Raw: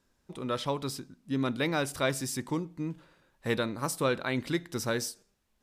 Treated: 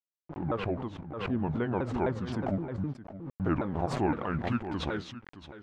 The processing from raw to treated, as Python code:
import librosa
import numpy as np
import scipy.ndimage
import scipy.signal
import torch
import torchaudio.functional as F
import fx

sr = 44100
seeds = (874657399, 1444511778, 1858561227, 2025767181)

y = fx.pitch_ramps(x, sr, semitones=-9.5, every_ms=258)
y = fx.rider(y, sr, range_db=4, speed_s=2.0)
y = np.where(np.abs(y) >= 10.0 ** (-44.0 / 20.0), y, 0.0)
y = fx.filter_sweep_lowpass(y, sr, from_hz=1100.0, to_hz=2200.0, start_s=3.43, end_s=5.12, q=0.86)
y = y + 10.0 ** (-14.5 / 20.0) * np.pad(y, (int(619 * sr / 1000.0), 0))[:len(y)]
y = fx.pre_swell(y, sr, db_per_s=56.0)